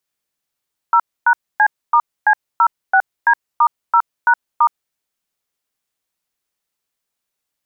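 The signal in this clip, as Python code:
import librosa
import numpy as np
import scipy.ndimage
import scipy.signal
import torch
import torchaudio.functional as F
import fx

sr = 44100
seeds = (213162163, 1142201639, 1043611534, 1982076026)

y = fx.dtmf(sr, digits='0#C*C06D*0#*', tone_ms=68, gap_ms=266, level_db=-11.0)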